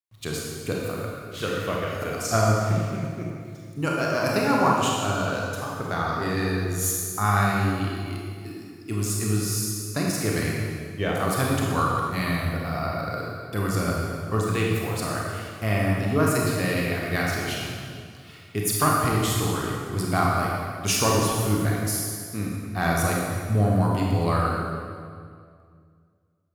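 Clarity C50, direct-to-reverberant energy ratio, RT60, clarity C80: -1.0 dB, -3.5 dB, 2.1 s, 0.5 dB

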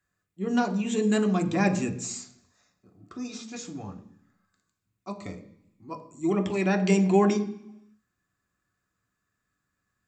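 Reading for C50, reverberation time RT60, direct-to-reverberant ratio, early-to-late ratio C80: 13.5 dB, 0.70 s, 4.5 dB, 16.0 dB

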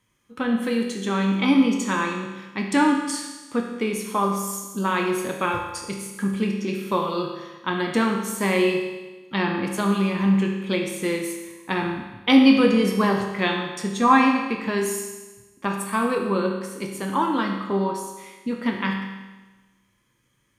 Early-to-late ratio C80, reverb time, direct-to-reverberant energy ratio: 6.0 dB, 1.2 s, 1.0 dB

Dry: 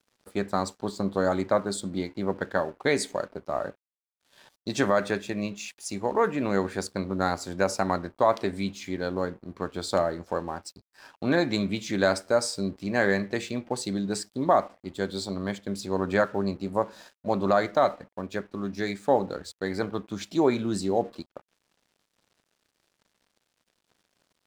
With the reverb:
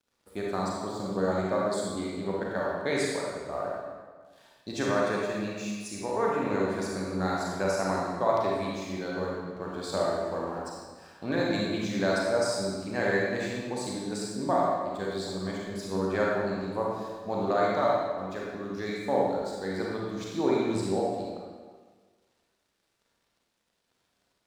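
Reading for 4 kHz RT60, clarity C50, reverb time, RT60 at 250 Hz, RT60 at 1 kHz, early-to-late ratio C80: 1.2 s, -2.0 dB, 1.5 s, 1.4 s, 1.5 s, 1.0 dB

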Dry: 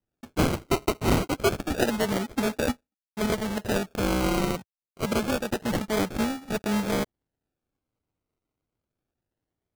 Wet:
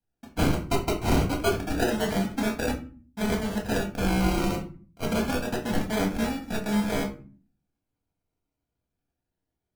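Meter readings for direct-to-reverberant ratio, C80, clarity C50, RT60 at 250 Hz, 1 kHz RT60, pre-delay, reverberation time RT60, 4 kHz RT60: 0.5 dB, 16.0 dB, 10.5 dB, 0.70 s, 0.40 s, 4 ms, 0.40 s, 0.25 s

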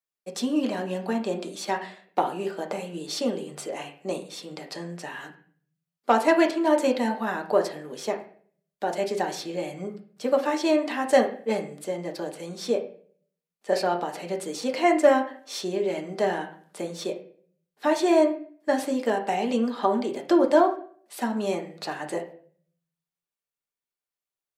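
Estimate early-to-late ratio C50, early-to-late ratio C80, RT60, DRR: 11.0 dB, 15.0 dB, 0.50 s, 2.0 dB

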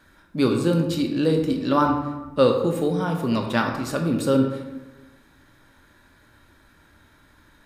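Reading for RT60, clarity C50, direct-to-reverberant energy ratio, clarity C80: 1.1 s, 6.0 dB, 3.0 dB, 8.0 dB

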